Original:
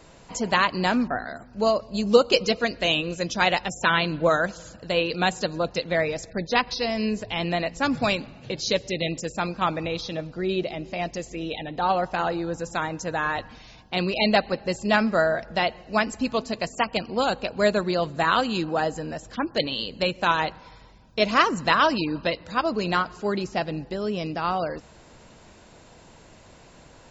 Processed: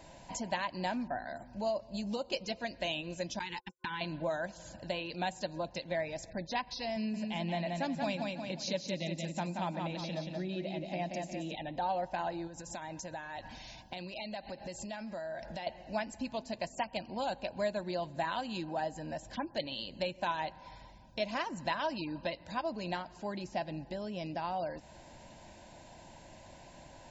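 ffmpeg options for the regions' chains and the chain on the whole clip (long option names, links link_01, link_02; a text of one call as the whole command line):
ffmpeg -i in.wav -filter_complex "[0:a]asettb=1/sr,asplit=3[link_01][link_02][link_03];[link_01]atrim=end=3.394[link_04];[link_02]atrim=start=3.39:end=4.01,asetpts=PTS-STARTPTS,afade=type=in:duration=0.004:curve=qsin,afade=type=out:start_time=0.616:duration=0.004:curve=qsin,agate=range=-57dB:threshold=-27dB:ratio=16:release=100:detection=peak,acompressor=threshold=-24dB:ratio=5:attack=3.2:release=140:knee=1:detection=peak,asuperstop=centerf=640:order=20:qfactor=2.1[link_05];[link_03]atrim=start=4.006[link_06];[link_04][link_05]acrossfade=duration=0.004:curve1=hsin:curve2=qsin[link_07];[link_07][link_06]acrossfade=duration=0.004:curve1=qsin:curve2=hsin,asettb=1/sr,asplit=3[link_08][link_09][link_10];[link_08]atrim=end=6.964[link_11];[link_09]atrim=start=6.96:end=11.55,asetpts=PTS-STARTPTS,afade=type=in:duration=0.004:curve=qsin,afade=type=out:start_time=4.586:duration=0.004:curve=qsin,lowshelf=frequency=130:width_type=q:width=3:gain=-9.5,aecho=1:1:179|358|537|716|895:0.562|0.214|0.0812|0.0309|0.0117,atrim=end_sample=202419[link_12];[link_10]atrim=start=11.546[link_13];[link_11][link_12]acrossfade=duration=0.004:curve1=hsin:curve2=qsin[link_14];[link_14][link_13]acrossfade=duration=0.004:curve1=qsin:curve2=hsin,asettb=1/sr,asplit=3[link_15][link_16][link_17];[link_15]atrim=end=12.474[link_18];[link_16]atrim=start=12.47:end=15.67,asetpts=PTS-STARTPTS,afade=type=in:duration=0.004:curve=qsin,afade=type=out:start_time=3.196:duration=0.004:curve=qsin,highshelf=frequency=4000:gain=7,acompressor=threshold=-34dB:ratio=6:attack=3.2:release=140:knee=1:detection=peak[link_19];[link_17]atrim=start=15.666[link_20];[link_18][link_19]acrossfade=duration=0.004:curve1=hsin:curve2=qsin[link_21];[link_21][link_20]acrossfade=duration=0.004:curve1=qsin:curve2=hsin,acompressor=threshold=-37dB:ratio=2,superequalizer=7b=0.447:8b=1.58:9b=1.58:10b=0.355,volume=-4dB" out.wav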